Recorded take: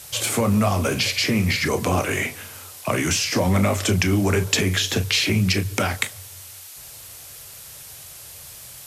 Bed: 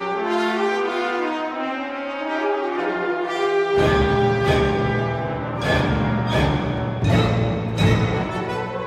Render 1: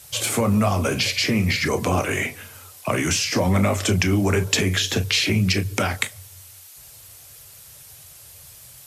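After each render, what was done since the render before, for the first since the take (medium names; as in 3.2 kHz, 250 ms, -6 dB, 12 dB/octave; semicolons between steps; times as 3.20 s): noise reduction 6 dB, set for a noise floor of -41 dBFS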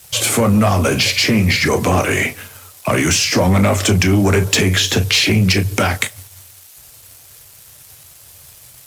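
waveshaping leveller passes 2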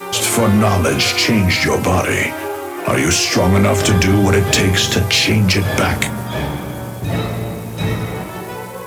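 add bed -2.5 dB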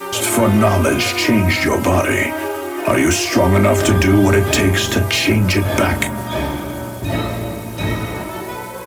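comb 3.2 ms, depth 53%; dynamic bell 4.7 kHz, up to -7 dB, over -29 dBFS, Q 0.81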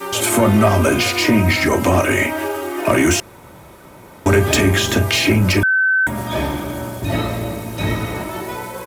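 3.20–4.26 s: room tone; 5.63–6.07 s: bleep 1.53 kHz -12 dBFS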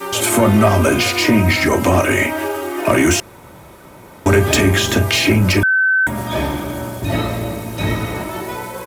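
trim +1 dB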